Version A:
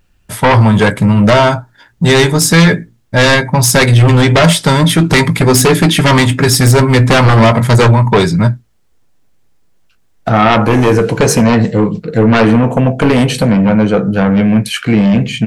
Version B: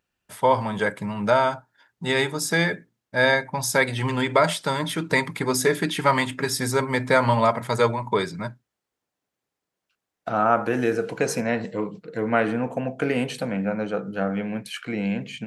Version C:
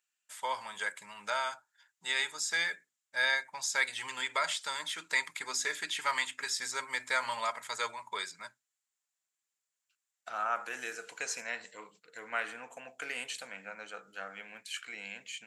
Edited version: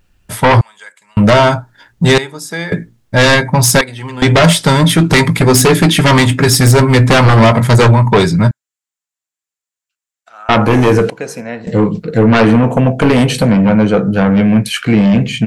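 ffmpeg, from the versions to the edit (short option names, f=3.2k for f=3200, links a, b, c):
-filter_complex "[2:a]asplit=2[a][b];[1:a]asplit=3[c][d][e];[0:a]asplit=6[f][g][h][i][j][k];[f]atrim=end=0.612[l];[a]atrim=start=0.608:end=1.172[m];[g]atrim=start=1.168:end=2.182[n];[c]atrim=start=2.178:end=2.722[o];[h]atrim=start=2.718:end=3.812[p];[d]atrim=start=3.808:end=4.222[q];[i]atrim=start=4.218:end=8.512[r];[b]atrim=start=8.508:end=10.492[s];[j]atrim=start=10.488:end=11.102[t];[e]atrim=start=11.098:end=11.672[u];[k]atrim=start=11.668[v];[l][m]acrossfade=d=0.004:c1=hsin:c2=hsin[w];[w][n]acrossfade=d=0.004:c1=hsin:c2=hsin[x];[x][o]acrossfade=d=0.004:c1=hsin:c2=hsin[y];[y][p]acrossfade=d=0.004:c1=hsin:c2=hsin[z];[z][q]acrossfade=d=0.004:c1=hsin:c2=hsin[aa];[aa][r]acrossfade=d=0.004:c1=hsin:c2=hsin[ab];[ab][s]acrossfade=d=0.004:c1=hsin:c2=hsin[ac];[ac][t]acrossfade=d=0.004:c1=hsin:c2=hsin[ad];[ad][u]acrossfade=d=0.004:c1=hsin:c2=hsin[ae];[ae][v]acrossfade=d=0.004:c1=hsin:c2=hsin"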